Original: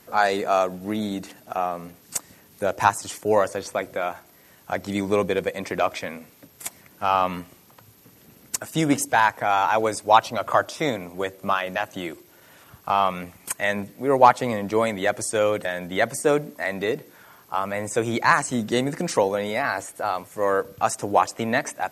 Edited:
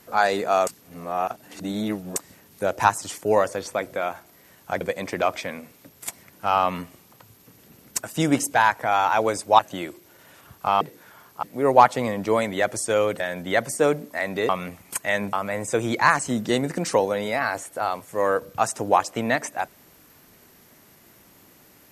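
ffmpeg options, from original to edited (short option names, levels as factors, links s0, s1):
-filter_complex "[0:a]asplit=9[s0][s1][s2][s3][s4][s5][s6][s7][s8];[s0]atrim=end=0.672[s9];[s1]atrim=start=0.668:end=2.162,asetpts=PTS-STARTPTS,areverse[s10];[s2]atrim=start=2.158:end=4.812[s11];[s3]atrim=start=5.388:end=10.172[s12];[s4]atrim=start=11.818:end=13.042[s13];[s5]atrim=start=16.938:end=17.562[s14];[s6]atrim=start=13.878:end=16.942[s15];[s7]atrim=start=13.038:end=13.882[s16];[s8]atrim=start=17.558[s17];[s9][s10]acrossfade=d=0.004:c1=hsin:c2=hsin[s18];[s18][s11]acrossfade=d=0.004:c1=hsin:c2=hsin[s19];[s19][s12]acrossfade=d=0.004:c1=hsin:c2=hsin[s20];[s20][s13]acrossfade=d=0.004:c1=hsin:c2=hsin[s21];[s21][s14]acrossfade=d=0.004:c1=hsin:c2=hsin[s22];[s22][s15]acrossfade=d=0.004:c1=hsin:c2=hsin[s23];[s23][s16]acrossfade=d=0.004:c1=hsin:c2=hsin[s24];[s24][s17]acrossfade=d=0.004:c1=hsin:c2=hsin"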